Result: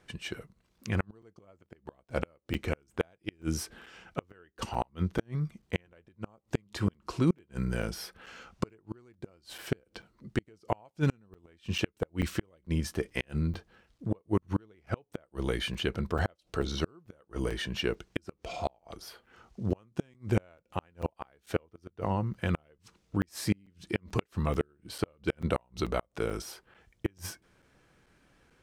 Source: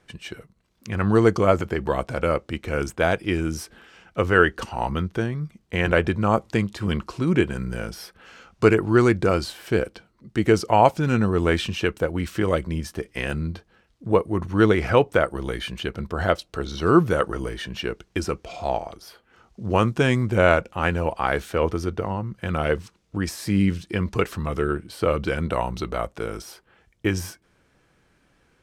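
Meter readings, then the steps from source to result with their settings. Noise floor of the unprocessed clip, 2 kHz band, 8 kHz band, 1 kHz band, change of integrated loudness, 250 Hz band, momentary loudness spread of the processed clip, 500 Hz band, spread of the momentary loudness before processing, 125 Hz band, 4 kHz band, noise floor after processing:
−64 dBFS, −14.0 dB, −6.0 dB, −14.5 dB, −11.5 dB, −10.5 dB, 14 LU, −14.0 dB, 13 LU, −8.5 dB, −7.0 dB, −73 dBFS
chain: dynamic equaliser 1,400 Hz, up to −3 dB, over −37 dBFS, Q 1.7
gate with flip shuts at −13 dBFS, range −38 dB
regular buffer underruns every 0.44 s, samples 256, zero, from 0:00.34
level −2 dB

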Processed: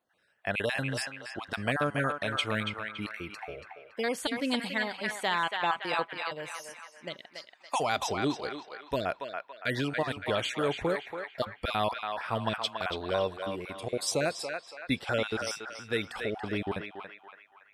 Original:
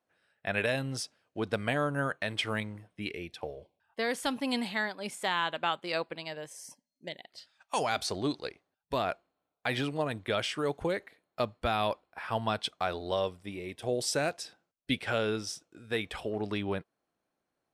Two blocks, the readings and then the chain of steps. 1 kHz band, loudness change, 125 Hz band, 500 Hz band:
+1.5 dB, +1.0 dB, +0.5 dB, +0.5 dB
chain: time-frequency cells dropped at random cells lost 24%
feedback echo with a band-pass in the loop 282 ms, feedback 54%, band-pass 1,500 Hz, level −3 dB
level +1.5 dB

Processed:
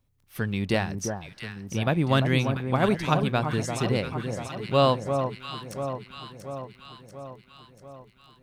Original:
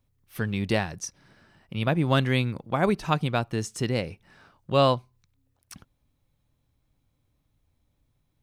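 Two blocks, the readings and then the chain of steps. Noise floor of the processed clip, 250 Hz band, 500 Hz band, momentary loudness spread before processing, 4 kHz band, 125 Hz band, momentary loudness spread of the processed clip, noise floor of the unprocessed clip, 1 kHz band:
−59 dBFS, +1.5 dB, +1.5 dB, 14 LU, +1.0 dB, +1.5 dB, 20 LU, −73 dBFS, +1.5 dB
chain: surface crackle 13 per second −48 dBFS
delay that swaps between a low-pass and a high-pass 344 ms, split 1,200 Hz, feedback 76%, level −6 dB

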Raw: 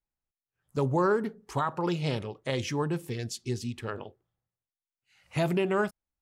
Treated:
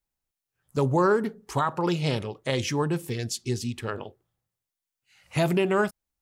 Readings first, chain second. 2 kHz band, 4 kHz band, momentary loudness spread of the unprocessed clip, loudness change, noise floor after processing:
+4.0 dB, +5.0 dB, 11 LU, +3.5 dB, below −85 dBFS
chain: high-shelf EQ 5,000 Hz +4.5 dB
level +3.5 dB

